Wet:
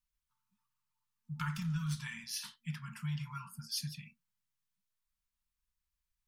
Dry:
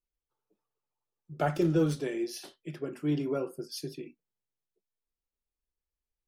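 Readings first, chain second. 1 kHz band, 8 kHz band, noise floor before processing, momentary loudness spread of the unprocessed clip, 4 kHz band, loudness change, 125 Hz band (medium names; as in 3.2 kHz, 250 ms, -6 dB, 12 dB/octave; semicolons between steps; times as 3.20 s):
-9.0 dB, +2.0 dB, under -85 dBFS, 18 LU, +2.0 dB, -8.0 dB, -3.0 dB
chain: compression 10:1, threshold -30 dBFS, peak gain reduction 9.5 dB; FFT band-reject 230–880 Hz; trim +3 dB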